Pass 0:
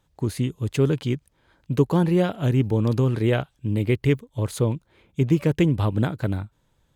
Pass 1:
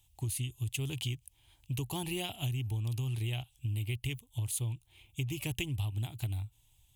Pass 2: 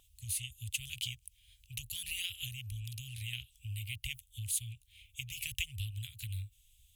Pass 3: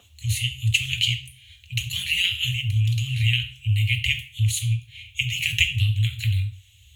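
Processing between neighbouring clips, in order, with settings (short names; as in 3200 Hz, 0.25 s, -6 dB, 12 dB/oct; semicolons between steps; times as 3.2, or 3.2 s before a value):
EQ curve 120 Hz 0 dB, 170 Hz -18 dB, 350 Hz -13 dB, 510 Hz -24 dB, 760 Hz -6 dB, 1500 Hz -20 dB, 2800 Hz +7 dB, 4500 Hz -2 dB, 9700 Hz +12 dB; compressor, threshold -32 dBFS, peak gain reduction 11.5 dB
inverse Chebyshev band-stop 260–720 Hz, stop band 70 dB; wow and flutter 15 cents; gain +2 dB
reverb RT60 0.55 s, pre-delay 3 ms, DRR 1.5 dB; gain +6.5 dB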